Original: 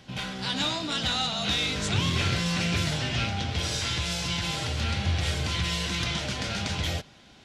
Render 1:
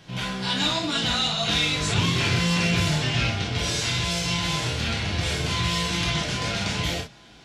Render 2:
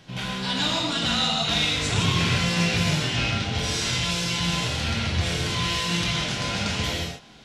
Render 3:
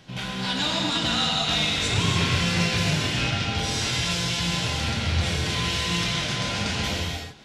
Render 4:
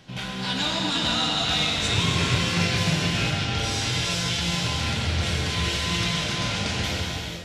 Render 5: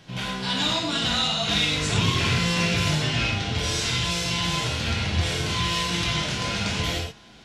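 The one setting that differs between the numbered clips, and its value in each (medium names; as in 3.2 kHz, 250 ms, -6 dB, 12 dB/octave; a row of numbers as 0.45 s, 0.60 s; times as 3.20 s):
gated-style reverb, gate: 80 ms, 200 ms, 340 ms, 510 ms, 130 ms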